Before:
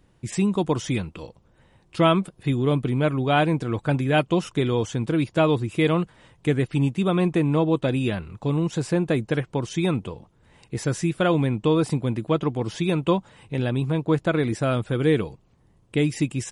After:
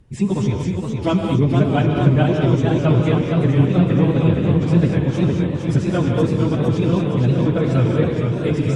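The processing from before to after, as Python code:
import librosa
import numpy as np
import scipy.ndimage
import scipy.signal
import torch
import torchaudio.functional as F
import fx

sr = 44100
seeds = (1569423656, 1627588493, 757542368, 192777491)

p1 = 10.0 ** (-17.5 / 20.0) * np.tanh(x / 10.0 ** (-17.5 / 20.0))
p2 = x + (p1 * librosa.db_to_amplitude(-9.0))
p3 = fx.low_shelf(p2, sr, hz=220.0, db=12.0)
p4 = fx.stretch_vocoder_free(p3, sr, factor=0.53)
p5 = fx.env_lowpass_down(p4, sr, base_hz=2000.0, full_db=-9.0)
p6 = fx.rev_gated(p5, sr, seeds[0], gate_ms=250, shape='rising', drr_db=2.0)
p7 = fx.echo_warbled(p6, sr, ms=464, feedback_pct=66, rate_hz=2.8, cents=140, wet_db=-5.0)
y = p7 * librosa.db_to_amplitude(-1.5)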